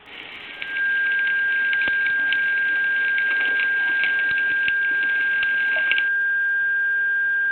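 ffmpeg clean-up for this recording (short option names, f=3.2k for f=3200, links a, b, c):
-af "adeclick=t=4,bandreject=f=416.6:t=h:w=4,bandreject=f=833.2:t=h:w=4,bandreject=f=1.2498k:t=h:w=4,bandreject=f=1.6k:w=30,afftdn=nr=30:nf=-25"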